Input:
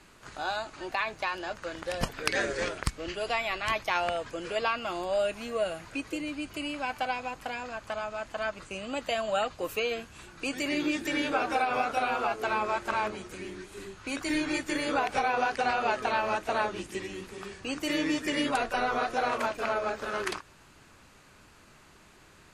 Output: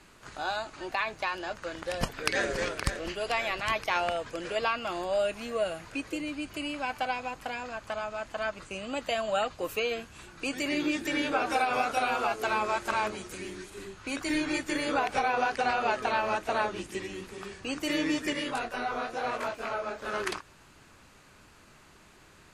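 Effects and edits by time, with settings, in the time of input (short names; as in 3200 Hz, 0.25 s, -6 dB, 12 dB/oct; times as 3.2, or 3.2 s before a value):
1.84–2.47 echo throw 0.52 s, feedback 65%, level -9.5 dB
11.46–13.7 high shelf 4600 Hz +7.5 dB
18.33–20.05 detuned doubles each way 30 cents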